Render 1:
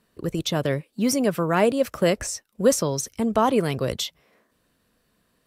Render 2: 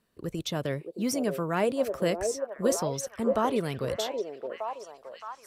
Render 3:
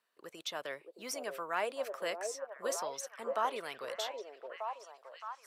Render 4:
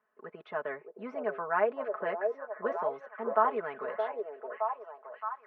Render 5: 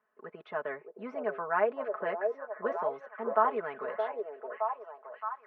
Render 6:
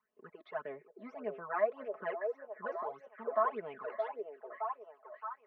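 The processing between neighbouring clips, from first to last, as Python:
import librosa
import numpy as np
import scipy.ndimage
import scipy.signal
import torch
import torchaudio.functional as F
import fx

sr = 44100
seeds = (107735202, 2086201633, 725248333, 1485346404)

y1 = fx.echo_stepped(x, sr, ms=619, hz=490.0, octaves=0.7, feedback_pct=70, wet_db=-2.0)
y1 = y1 * librosa.db_to_amplitude(-7.0)
y2 = scipy.signal.sosfilt(scipy.signal.butter(2, 860.0, 'highpass', fs=sr, output='sos'), y1)
y2 = fx.high_shelf(y2, sr, hz=3600.0, db=-7.0)
y2 = y2 * librosa.db_to_amplitude(-1.0)
y3 = scipy.signal.sosfilt(scipy.signal.butter(4, 1700.0, 'lowpass', fs=sr, output='sos'), y2)
y3 = y3 + 0.86 * np.pad(y3, (int(4.7 * sr / 1000.0), 0))[:len(y3)]
y3 = y3 * librosa.db_to_amplitude(4.5)
y4 = y3
y5 = fx.phaser_stages(y4, sr, stages=12, low_hz=140.0, high_hz=1600.0, hz=1.7, feedback_pct=30)
y5 = y5 * librosa.db_to_amplitude(-3.0)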